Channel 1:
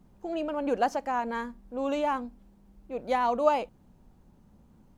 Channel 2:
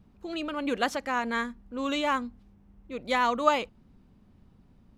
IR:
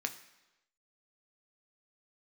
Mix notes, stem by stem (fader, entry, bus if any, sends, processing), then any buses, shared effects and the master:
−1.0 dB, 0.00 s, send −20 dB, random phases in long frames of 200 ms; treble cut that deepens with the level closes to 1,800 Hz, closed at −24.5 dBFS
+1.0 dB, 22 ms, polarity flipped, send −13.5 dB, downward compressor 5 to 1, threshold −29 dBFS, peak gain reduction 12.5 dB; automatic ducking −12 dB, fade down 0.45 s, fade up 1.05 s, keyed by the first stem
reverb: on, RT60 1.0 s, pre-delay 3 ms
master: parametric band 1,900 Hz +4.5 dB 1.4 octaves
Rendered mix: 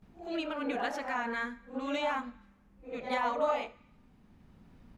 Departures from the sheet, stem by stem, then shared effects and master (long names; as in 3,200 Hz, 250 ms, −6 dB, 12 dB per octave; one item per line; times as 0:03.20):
stem 1 −1.0 dB → −8.5 dB
stem 2: polarity flipped